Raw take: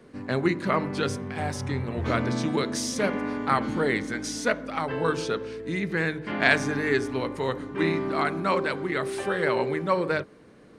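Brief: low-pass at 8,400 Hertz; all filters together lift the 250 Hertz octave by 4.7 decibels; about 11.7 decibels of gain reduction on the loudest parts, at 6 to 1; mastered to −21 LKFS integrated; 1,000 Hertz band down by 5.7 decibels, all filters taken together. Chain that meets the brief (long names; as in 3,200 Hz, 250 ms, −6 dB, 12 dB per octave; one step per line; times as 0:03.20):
low-pass filter 8,400 Hz
parametric band 250 Hz +6.5 dB
parametric band 1,000 Hz −8 dB
downward compressor 6 to 1, threshold −30 dBFS
level +13 dB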